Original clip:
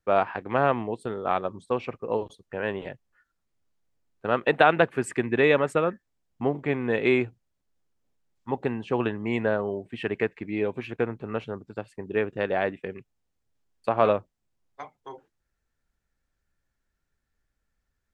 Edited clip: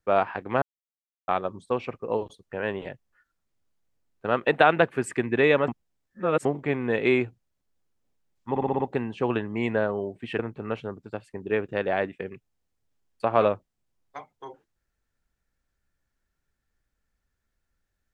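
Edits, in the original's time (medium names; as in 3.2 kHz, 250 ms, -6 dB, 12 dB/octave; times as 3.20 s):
0.62–1.28 s: mute
5.68–6.45 s: reverse
8.50 s: stutter 0.06 s, 6 plays
10.09–11.03 s: delete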